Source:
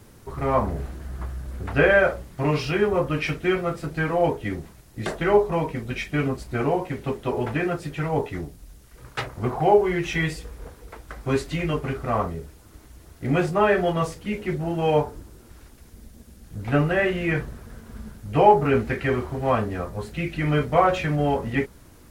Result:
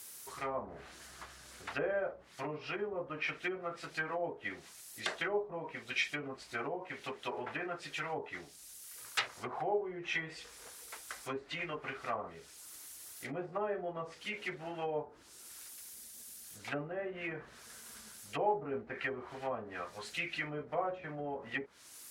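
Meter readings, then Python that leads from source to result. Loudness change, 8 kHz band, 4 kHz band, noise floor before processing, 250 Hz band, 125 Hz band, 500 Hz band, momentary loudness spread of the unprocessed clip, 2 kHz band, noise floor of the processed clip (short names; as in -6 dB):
-15.5 dB, -2.5 dB, -7.0 dB, -50 dBFS, -19.5 dB, -25.0 dB, -16.0 dB, 16 LU, -11.5 dB, -56 dBFS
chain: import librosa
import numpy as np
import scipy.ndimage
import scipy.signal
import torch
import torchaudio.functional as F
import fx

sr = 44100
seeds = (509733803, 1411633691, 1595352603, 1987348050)

y = fx.env_lowpass_down(x, sr, base_hz=560.0, full_db=-18.5)
y = np.diff(y, prepend=0.0)
y = F.gain(torch.from_numpy(y), 9.0).numpy()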